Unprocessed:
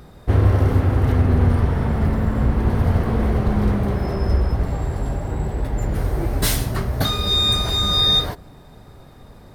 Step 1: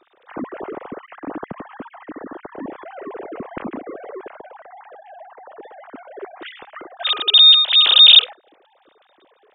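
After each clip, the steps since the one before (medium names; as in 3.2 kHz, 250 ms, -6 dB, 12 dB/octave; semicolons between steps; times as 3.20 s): formants replaced by sine waves; trim -1 dB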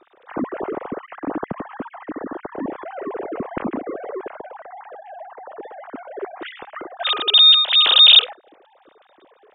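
low-pass 2.2 kHz 6 dB/octave; trim +4 dB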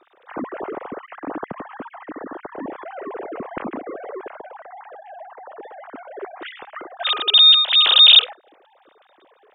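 bass shelf 360 Hz -7.5 dB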